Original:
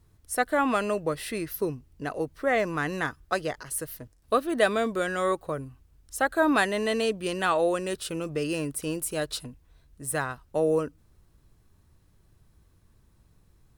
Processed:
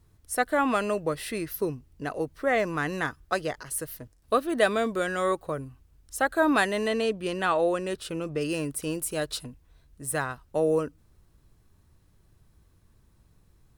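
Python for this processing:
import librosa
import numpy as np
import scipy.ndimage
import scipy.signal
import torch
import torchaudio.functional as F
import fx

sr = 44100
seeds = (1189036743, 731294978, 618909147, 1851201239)

y = fx.high_shelf(x, sr, hz=4900.0, db=-7.0, at=(6.88, 8.41))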